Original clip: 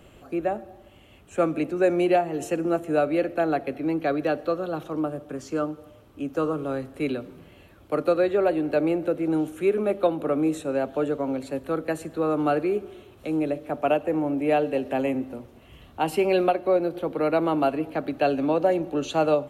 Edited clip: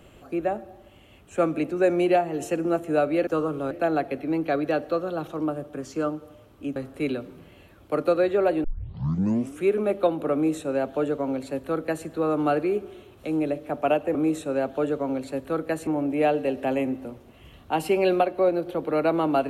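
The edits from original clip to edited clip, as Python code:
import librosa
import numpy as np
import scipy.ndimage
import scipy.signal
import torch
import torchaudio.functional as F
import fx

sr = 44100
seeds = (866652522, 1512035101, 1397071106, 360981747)

y = fx.edit(x, sr, fx.move(start_s=6.32, length_s=0.44, to_s=3.27),
    fx.tape_start(start_s=8.64, length_s=0.97),
    fx.duplicate(start_s=10.34, length_s=1.72, to_s=14.15), tone=tone)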